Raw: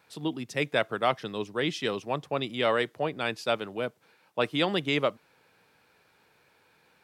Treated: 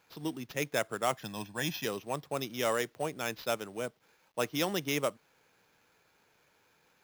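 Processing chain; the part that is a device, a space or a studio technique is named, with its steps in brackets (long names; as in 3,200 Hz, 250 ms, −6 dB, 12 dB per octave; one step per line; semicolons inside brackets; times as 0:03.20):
early companding sampler (sample-rate reduction 8,800 Hz, jitter 0%; log-companded quantiser 6 bits)
0:01.22–0:01.85: comb filter 1.2 ms, depth 72%
level −5 dB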